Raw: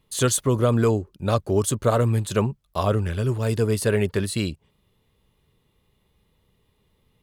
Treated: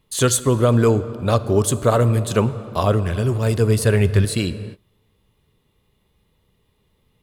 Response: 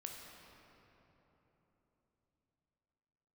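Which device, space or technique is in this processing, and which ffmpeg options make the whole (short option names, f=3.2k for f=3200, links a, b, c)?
keyed gated reverb: -filter_complex "[0:a]asplit=3[a][b][c];[1:a]atrim=start_sample=2205[d];[b][d]afir=irnorm=-1:irlink=0[e];[c]apad=whole_len=318726[f];[e][f]sidechaingate=range=-33dB:threshold=-55dB:ratio=16:detection=peak,volume=-5dB[g];[a][g]amix=inputs=2:normalize=0,asettb=1/sr,asplit=3[h][i][j];[h]atrim=end=3.504[k];[i]atrim=start=3.5:end=4.25,asetpts=PTS-STARTPTS,afade=t=in:d=0.004:c=qsin,afade=t=out:st=0.746:d=0.004:c=qsin,asubboost=boost=11:cutoff=160[l];[j]atrim=start=4.246[m];[k][l]acrossfade=d=0.004:c1=hsin:c2=qsin[n];[n][m]acrossfade=d=0.004:c1=qsin:c2=hsin,volume=1.5dB"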